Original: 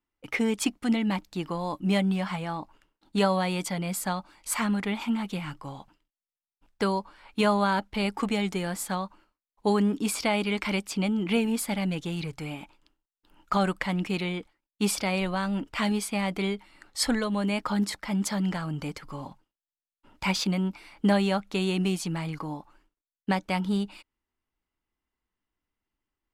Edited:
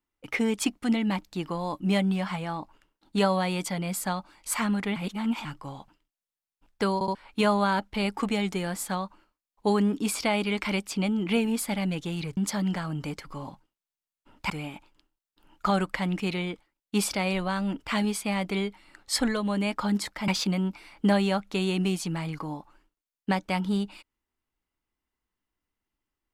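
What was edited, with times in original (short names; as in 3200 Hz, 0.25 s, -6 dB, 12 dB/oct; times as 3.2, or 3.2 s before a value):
4.96–5.45 reverse
6.94 stutter in place 0.07 s, 3 plays
18.15–20.28 move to 12.37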